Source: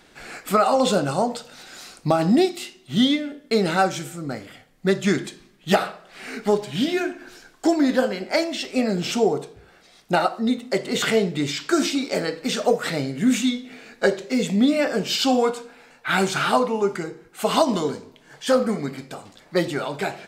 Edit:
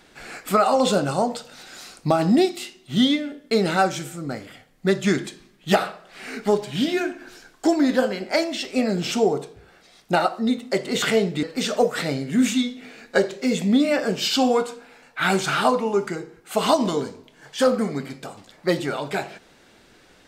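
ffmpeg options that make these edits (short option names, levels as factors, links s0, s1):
-filter_complex "[0:a]asplit=2[s0][s1];[s0]atrim=end=11.432[s2];[s1]atrim=start=12.308[s3];[s2][s3]acrossfade=d=0.004:c1=hsin:c2=hsin"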